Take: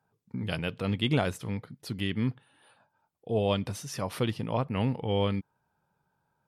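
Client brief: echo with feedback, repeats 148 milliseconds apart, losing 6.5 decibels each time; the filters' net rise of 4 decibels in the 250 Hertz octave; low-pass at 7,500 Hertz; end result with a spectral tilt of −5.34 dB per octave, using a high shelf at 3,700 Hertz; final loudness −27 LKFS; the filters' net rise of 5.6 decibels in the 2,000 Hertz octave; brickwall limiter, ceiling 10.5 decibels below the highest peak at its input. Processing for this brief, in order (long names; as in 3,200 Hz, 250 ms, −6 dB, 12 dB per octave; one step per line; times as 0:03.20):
low-pass filter 7,500 Hz
parametric band 250 Hz +5 dB
parametric band 2,000 Hz +6 dB
high-shelf EQ 3,700 Hz +4 dB
brickwall limiter −20 dBFS
repeating echo 148 ms, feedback 47%, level −6.5 dB
level +4.5 dB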